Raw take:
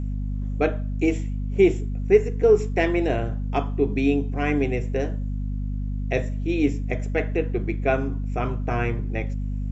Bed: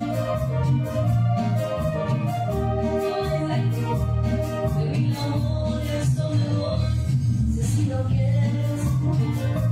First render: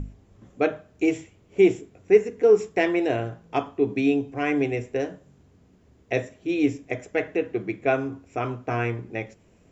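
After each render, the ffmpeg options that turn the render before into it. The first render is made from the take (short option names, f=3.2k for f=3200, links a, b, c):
-af "bandreject=f=50:t=h:w=6,bandreject=f=100:t=h:w=6,bandreject=f=150:t=h:w=6,bandreject=f=200:t=h:w=6,bandreject=f=250:t=h:w=6"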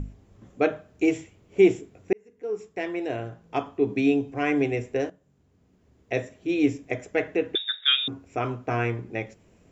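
-filter_complex "[0:a]asettb=1/sr,asplit=3[a][b][c];[a]atrim=end=7.554[d];[b]atrim=start=7.55:end=8.08,asetpts=PTS-STARTPTS,afade=t=in:d=0.004:c=qsin,afade=t=out:st=0.526:d=0.004:c=qsin,lowpass=f=3.3k:t=q:w=0.5098,lowpass=f=3.3k:t=q:w=0.6013,lowpass=f=3.3k:t=q:w=0.9,lowpass=f=3.3k:t=q:w=2.563,afreqshift=-3900[e];[c]atrim=start=8.076[f];[d][e]acrossfade=d=0.004:c1=hsin:c2=qsin[g];[g][f]acrossfade=d=0.004:c1=qsin:c2=hsin,asplit=3[h][i][j];[h]atrim=end=2.13,asetpts=PTS-STARTPTS,afade=t=out:st=2.126:d=0.004:c=hsin[k];[i]atrim=start=2.13:end=5.1,asetpts=PTS-STARTPTS,afade=t=in:d=1.89,afade=t=out:st=2.966:d=0.004:c=hsin:silence=0.188365[l];[j]atrim=start=5.1,asetpts=PTS-STARTPTS,afade=t=in:d=1.43:silence=0.188365[m];[k][l][m]concat=n=3:v=0:a=1"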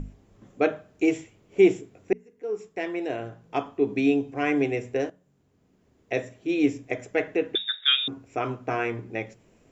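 -af "equalizer=f=75:t=o:w=0.84:g=-7.5,bandreject=f=60:t=h:w=6,bandreject=f=120:t=h:w=6,bandreject=f=180:t=h:w=6,bandreject=f=240:t=h:w=6"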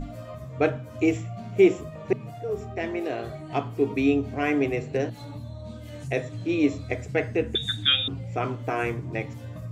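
-filter_complex "[1:a]volume=-14.5dB[a];[0:a][a]amix=inputs=2:normalize=0"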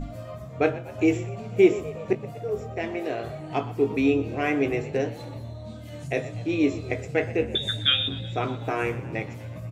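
-filter_complex "[0:a]asplit=2[a][b];[b]adelay=19,volume=-11dB[c];[a][c]amix=inputs=2:normalize=0,asplit=7[d][e][f][g][h][i][j];[e]adelay=122,afreqshift=38,volume=-17dB[k];[f]adelay=244,afreqshift=76,volume=-20.9dB[l];[g]adelay=366,afreqshift=114,volume=-24.8dB[m];[h]adelay=488,afreqshift=152,volume=-28.6dB[n];[i]adelay=610,afreqshift=190,volume=-32.5dB[o];[j]adelay=732,afreqshift=228,volume=-36.4dB[p];[d][k][l][m][n][o][p]amix=inputs=7:normalize=0"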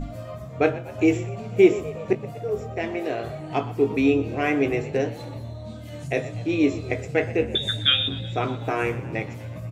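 -af "volume=2dB"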